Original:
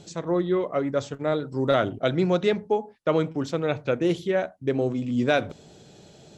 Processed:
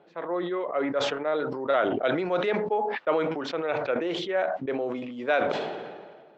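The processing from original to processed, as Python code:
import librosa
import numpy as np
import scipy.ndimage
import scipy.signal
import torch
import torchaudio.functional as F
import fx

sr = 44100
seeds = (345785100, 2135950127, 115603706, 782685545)

y = fx.env_lowpass(x, sr, base_hz=1700.0, full_db=-19.5)
y = fx.bandpass_edges(y, sr, low_hz=540.0, high_hz=2400.0)
y = fx.sustainer(y, sr, db_per_s=34.0)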